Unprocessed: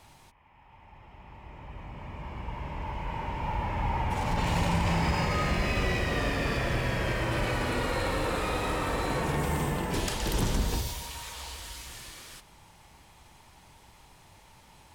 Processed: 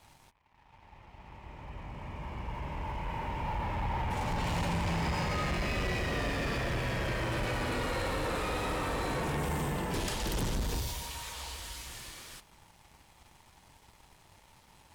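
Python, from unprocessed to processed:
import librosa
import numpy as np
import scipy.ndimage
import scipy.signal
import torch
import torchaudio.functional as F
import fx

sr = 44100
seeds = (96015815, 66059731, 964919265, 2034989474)

y = fx.leveller(x, sr, passes=2)
y = y * librosa.db_to_amplitude(-8.5)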